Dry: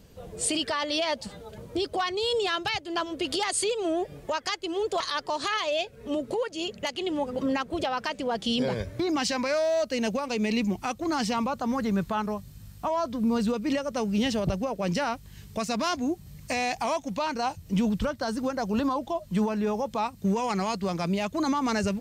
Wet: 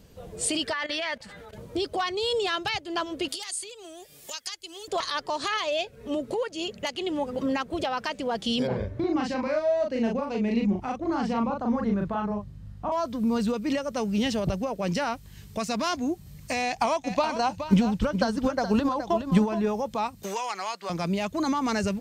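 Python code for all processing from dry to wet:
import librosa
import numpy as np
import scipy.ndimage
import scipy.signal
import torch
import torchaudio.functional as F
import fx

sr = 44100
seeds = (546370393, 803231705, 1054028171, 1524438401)

y = fx.chain(x, sr, fx.peak_eq(hz=1800.0, db=14.5, octaves=1.1),
    fx.level_steps(step_db=15), at=(0.73, 1.53))
y = fx.chain(y, sr, fx.pre_emphasis(coefficient=0.9),
    fx.band_squash(depth_pct=100), at=(3.28, 4.88))
y = fx.chain(y, sr, fx.lowpass(hz=1000.0, slope=6),
    fx.doubler(ms=39.0, db=-2.5), at=(8.67, 12.92))
y = fx.chain(y, sr, fx.high_shelf(hz=11000.0, db=-9.0),
    fx.transient(attack_db=10, sustain_db=-2),
    fx.echo_single(ms=420, db=-9.5), at=(16.62, 19.69))
y = fx.chain(y, sr, fx.highpass(hz=790.0, slope=12),
    fx.high_shelf(hz=8000.0, db=-5.0),
    fx.band_squash(depth_pct=100), at=(20.23, 20.9))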